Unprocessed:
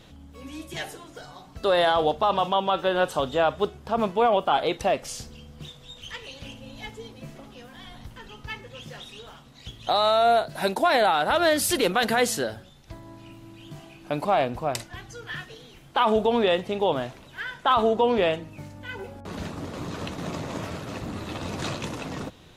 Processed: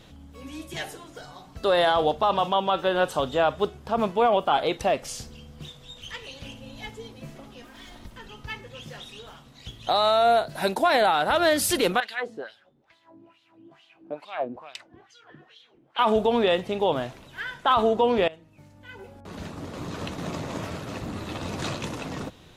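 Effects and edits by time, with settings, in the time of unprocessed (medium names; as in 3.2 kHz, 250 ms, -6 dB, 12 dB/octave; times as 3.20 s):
7.62–8.13 s: comb filter that takes the minimum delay 3.2 ms
12.00–15.99 s: wah-wah 2.3 Hz 280–3700 Hz, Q 2.5
18.28–20.05 s: fade in, from -20 dB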